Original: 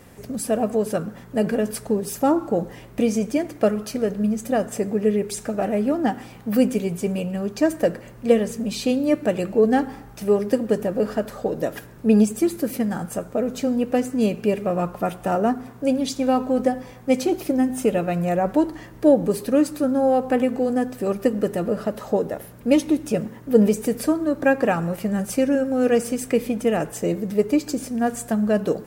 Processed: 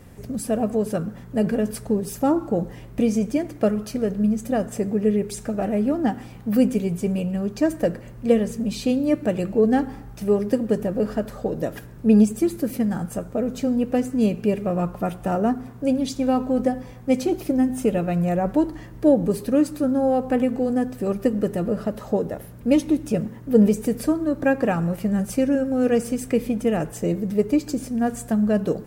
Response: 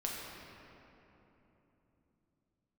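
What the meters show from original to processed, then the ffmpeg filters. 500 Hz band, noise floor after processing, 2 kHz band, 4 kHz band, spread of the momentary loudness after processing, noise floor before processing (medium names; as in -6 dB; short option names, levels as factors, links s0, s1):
-2.0 dB, -41 dBFS, -3.5 dB, -3.5 dB, 7 LU, -43 dBFS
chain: -af "lowshelf=f=200:g=10.5,volume=0.668"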